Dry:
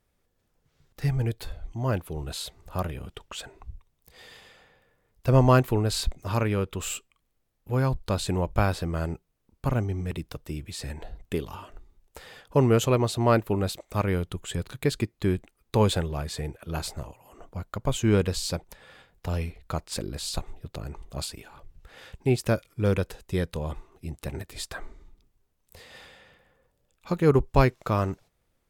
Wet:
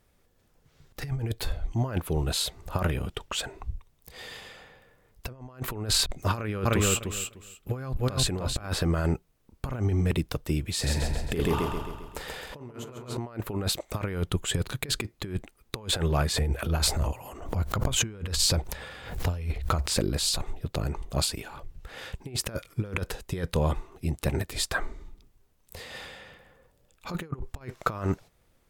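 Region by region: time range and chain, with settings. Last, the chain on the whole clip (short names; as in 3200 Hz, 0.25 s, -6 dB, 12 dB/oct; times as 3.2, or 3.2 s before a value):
6.35–8.67 notch 920 Hz, Q 8.4 + feedback echo 0.3 s, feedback 17%, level -7 dB
10.73–13.17 doubler 41 ms -11 dB + feedback echo 0.133 s, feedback 53%, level -3.5 dB
16.32–19.98 bell 70 Hz +9 dB 0.66 oct + transient shaper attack -8 dB, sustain +5 dB + backwards sustainer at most 87 dB/s
whole clip: dynamic EQ 1400 Hz, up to +4 dB, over -41 dBFS, Q 1.3; negative-ratio compressor -29 dBFS, ratio -0.5; gain +2 dB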